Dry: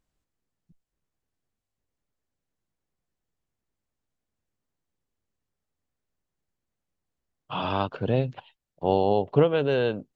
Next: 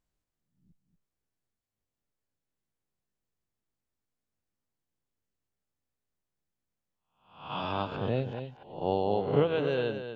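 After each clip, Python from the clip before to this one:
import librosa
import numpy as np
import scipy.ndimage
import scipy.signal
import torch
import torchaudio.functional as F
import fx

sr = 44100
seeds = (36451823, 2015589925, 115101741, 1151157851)

y = fx.spec_swells(x, sr, rise_s=0.54)
y = y + 10.0 ** (-9.0 / 20.0) * np.pad(y, (int(236 * sr / 1000.0), 0))[:len(y)]
y = F.gain(torch.from_numpy(y), -6.5).numpy()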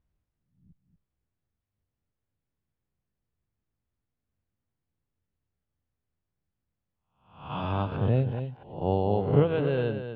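y = scipy.signal.sosfilt(scipy.signal.butter(2, 2900.0, 'lowpass', fs=sr, output='sos'), x)
y = fx.peak_eq(y, sr, hz=75.0, db=12.0, octaves=2.5)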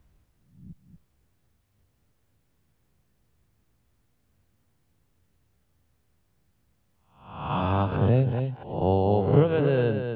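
y = fx.band_squash(x, sr, depth_pct=40)
y = F.gain(torch.from_numpy(y), 3.5).numpy()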